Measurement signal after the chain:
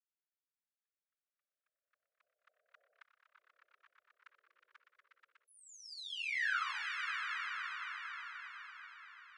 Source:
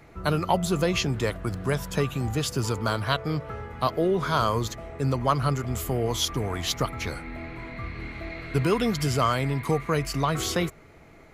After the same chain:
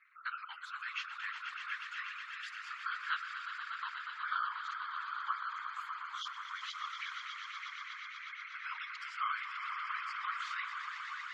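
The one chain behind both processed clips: steep high-pass 1.3 kHz 48 dB/octave; on a send: echo with a slow build-up 121 ms, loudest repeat 5, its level -9 dB; on the sum: spectral gate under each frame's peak -20 dB strong; whisper effect; low-pass 1.8 kHz 12 dB/octave; trim -3.5 dB

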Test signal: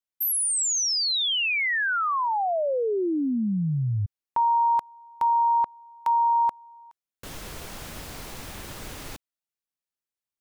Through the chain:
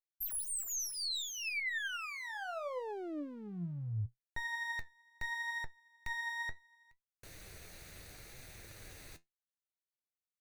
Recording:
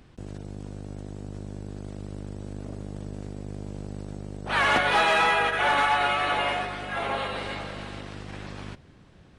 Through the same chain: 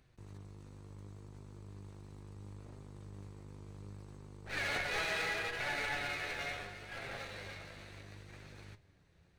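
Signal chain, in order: comb filter that takes the minimum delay 0.48 ms; peaking EQ 240 Hz -9 dB 0.81 oct; flange 0.71 Hz, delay 7.6 ms, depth 4.6 ms, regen +60%; trim -7.5 dB

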